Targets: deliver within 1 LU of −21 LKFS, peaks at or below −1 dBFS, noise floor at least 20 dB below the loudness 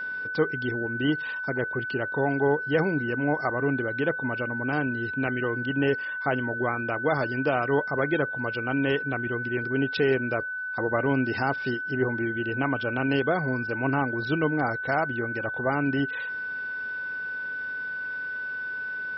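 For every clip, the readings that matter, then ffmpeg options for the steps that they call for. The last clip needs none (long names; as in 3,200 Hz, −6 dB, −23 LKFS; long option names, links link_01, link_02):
interfering tone 1,500 Hz; level of the tone −30 dBFS; integrated loudness −27.0 LKFS; sample peak −11.5 dBFS; target loudness −21.0 LKFS
→ -af "bandreject=frequency=1500:width=30"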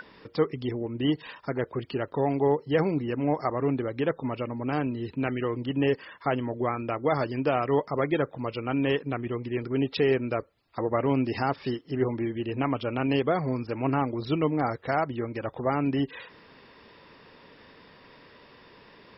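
interfering tone none found; integrated loudness −28.5 LKFS; sample peak −12.0 dBFS; target loudness −21.0 LKFS
→ -af "volume=7.5dB"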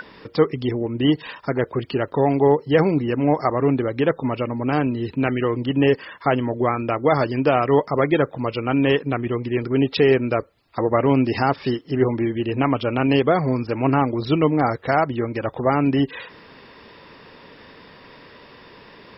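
integrated loudness −21.0 LKFS; sample peak −4.5 dBFS; background noise floor −46 dBFS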